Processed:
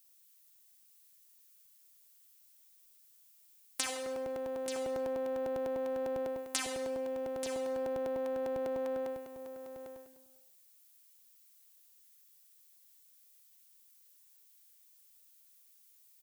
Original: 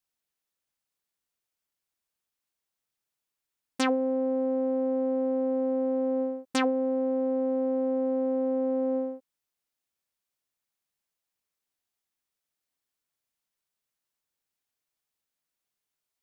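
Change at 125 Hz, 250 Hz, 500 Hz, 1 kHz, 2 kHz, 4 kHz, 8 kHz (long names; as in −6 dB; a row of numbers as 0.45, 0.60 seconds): can't be measured, −15.5 dB, −7.0 dB, −6.5 dB, −5.0 dB, −1.5 dB, +6.0 dB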